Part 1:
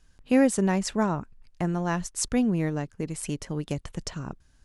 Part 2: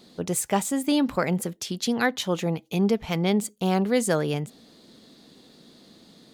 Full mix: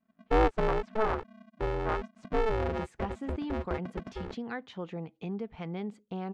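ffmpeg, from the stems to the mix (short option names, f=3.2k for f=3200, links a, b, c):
-filter_complex "[0:a]afwtdn=0.0355,equalizer=f=1.1k:t=o:w=0.39:g=7,aeval=exprs='val(0)*sgn(sin(2*PI*220*n/s))':c=same,volume=-3.5dB[a];[1:a]bandreject=f=590:w=12,acompressor=threshold=-32dB:ratio=2,adelay=2500,volume=-6.5dB[b];[a][b]amix=inputs=2:normalize=0,lowpass=2.2k"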